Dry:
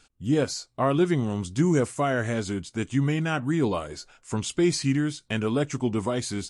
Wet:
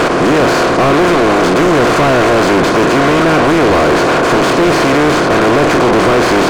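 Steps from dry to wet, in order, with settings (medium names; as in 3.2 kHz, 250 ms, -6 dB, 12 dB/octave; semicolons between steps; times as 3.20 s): spectral levelling over time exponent 0.2; treble shelf 2.8 kHz -9 dB; overdrive pedal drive 34 dB, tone 2.1 kHz, clips at -2.5 dBFS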